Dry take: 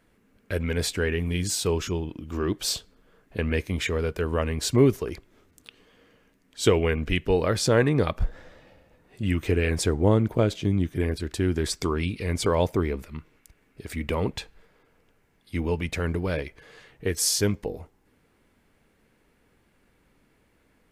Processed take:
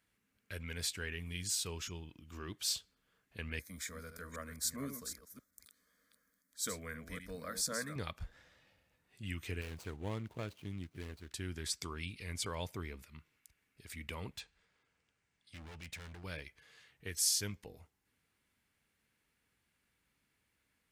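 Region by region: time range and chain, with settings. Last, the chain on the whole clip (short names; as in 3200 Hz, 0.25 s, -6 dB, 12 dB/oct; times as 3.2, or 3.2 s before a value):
3.59–7.96 reverse delay 0.257 s, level -8 dB + high shelf 10000 Hz +10.5 dB + fixed phaser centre 560 Hz, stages 8
9.61–11.31 median filter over 25 samples + low shelf 180 Hz -4.5 dB
14.36–16.24 steep low-pass 9200 Hz + overloaded stage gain 31.5 dB
whole clip: HPF 55 Hz; passive tone stack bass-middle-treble 5-5-5; gain -1 dB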